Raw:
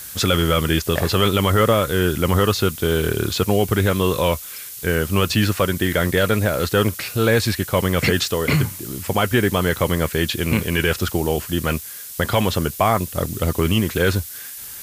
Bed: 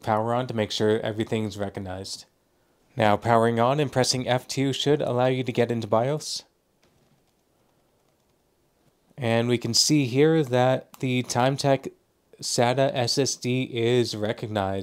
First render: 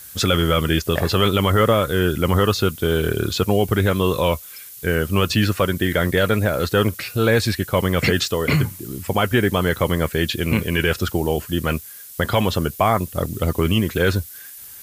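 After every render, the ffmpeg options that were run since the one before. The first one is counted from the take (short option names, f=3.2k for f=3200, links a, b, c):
-af "afftdn=nr=7:nf=-35"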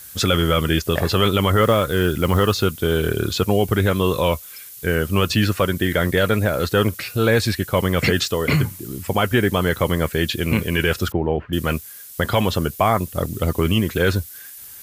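-filter_complex "[0:a]asettb=1/sr,asplit=3[a][b][c];[a]atrim=end=1.624[d];[b]atrim=start=1.62:end=2.65,asetpts=PTS-STARTPTS,afade=t=in:d=0.004:c=qsin,afade=t=out:st=1.026:d=0.004:c=qsin,acrusher=bits=7:mode=log:mix=0:aa=0.000001[e];[c]atrim=start=2.646[f];[d][e]acrossfade=d=0.004:c1=hsin:c2=qsin[g];[g][f]acrossfade=d=0.004:c1=qsin:c2=hsin,asettb=1/sr,asplit=3[h][i][j];[h]atrim=end=11.124[k];[i]atrim=start=11.12:end=11.53,asetpts=PTS-STARTPTS,afade=t=in:d=0.004:c=qsin,afade=t=out:st=0.406:d=0.004:c=qsin,lowpass=f=2.3k:w=0.5412,lowpass=f=2.3k:w=1.3066[l];[j]atrim=start=11.526[m];[k][l]acrossfade=d=0.004:c1=hsin:c2=qsin[n];[n][m]acrossfade=d=0.004:c1=qsin:c2=hsin"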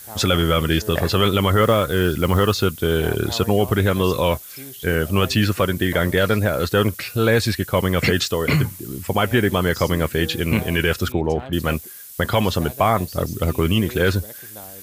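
-filter_complex "[1:a]volume=-15.5dB[a];[0:a][a]amix=inputs=2:normalize=0"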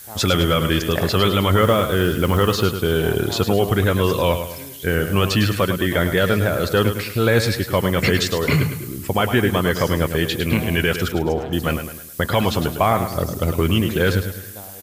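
-af "aecho=1:1:105|210|315|420|525:0.355|0.153|0.0656|0.0282|0.0121"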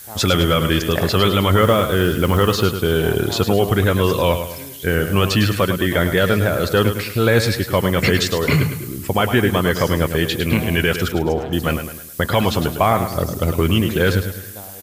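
-af "volume=1.5dB"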